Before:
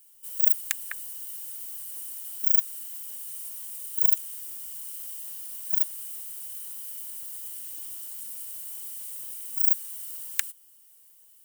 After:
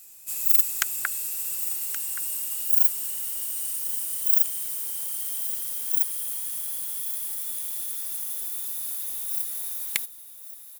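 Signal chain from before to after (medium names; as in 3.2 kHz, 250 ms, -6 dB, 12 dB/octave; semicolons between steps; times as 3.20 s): gliding tape speed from 85% -> 127%; saturation -19.5 dBFS, distortion -10 dB; delay 1124 ms -14 dB; trim +9 dB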